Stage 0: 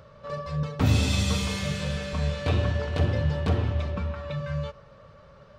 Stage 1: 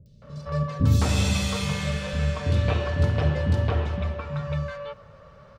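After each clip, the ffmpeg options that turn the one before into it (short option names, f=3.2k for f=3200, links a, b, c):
-filter_complex "[0:a]acrossover=split=320|3900[a][b][c];[c]adelay=60[d];[b]adelay=220[e];[a][e][d]amix=inputs=3:normalize=0,volume=2.5dB"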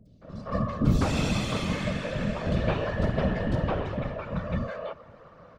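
-af "highpass=120,highshelf=f=3.8k:g=-10.5,afftfilt=real='hypot(re,im)*cos(2*PI*random(0))':imag='hypot(re,im)*sin(2*PI*random(1))':win_size=512:overlap=0.75,volume=6.5dB"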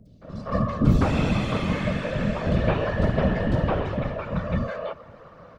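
-filter_complex "[0:a]acrossover=split=3000[a][b];[b]acompressor=threshold=-51dB:ratio=4:attack=1:release=60[c];[a][c]amix=inputs=2:normalize=0,volume=4dB"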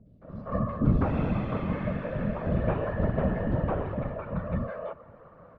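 -af "lowpass=1.6k,volume=-4.5dB"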